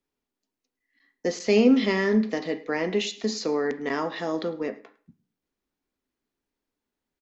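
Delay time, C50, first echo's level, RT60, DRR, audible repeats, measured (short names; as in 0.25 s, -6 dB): 0.106 s, 15.0 dB, -22.5 dB, 0.45 s, 9.5 dB, 1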